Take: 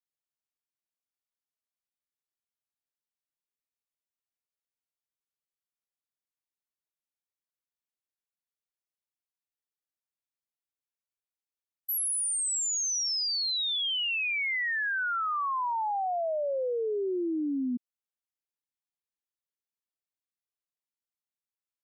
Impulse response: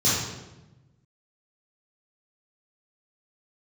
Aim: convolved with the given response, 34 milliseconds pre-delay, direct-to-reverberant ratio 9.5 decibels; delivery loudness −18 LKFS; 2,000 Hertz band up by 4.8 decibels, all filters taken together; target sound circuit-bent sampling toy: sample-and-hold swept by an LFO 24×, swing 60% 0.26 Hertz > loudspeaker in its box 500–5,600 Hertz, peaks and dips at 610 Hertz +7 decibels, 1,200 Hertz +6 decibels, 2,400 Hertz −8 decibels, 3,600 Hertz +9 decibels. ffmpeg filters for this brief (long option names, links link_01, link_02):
-filter_complex "[0:a]equalizer=frequency=2000:width_type=o:gain=7.5,asplit=2[link_01][link_02];[1:a]atrim=start_sample=2205,adelay=34[link_03];[link_02][link_03]afir=irnorm=-1:irlink=0,volume=-24.5dB[link_04];[link_01][link_04]amix=inputs=2:normalize=0,acrusher=samples=24:mix=1:aa=0.000001:lfo=1:lforange=14.4:lforate=0.26,highpass=500,equalizer=frequency=610:width_type=q:width=4:gain=7,equalizer=frequency=1200:width_type=q:width=4:gain=6,equalizer=frequency=2400:width_type=q:width=4:gain=-8,equalizer=frequency=3600:width_type=q:width=4:gain=9,lowpass=frequency=5600:width=0.5412,lowpass=frequency=5600:width=1.3066,volume=8dB"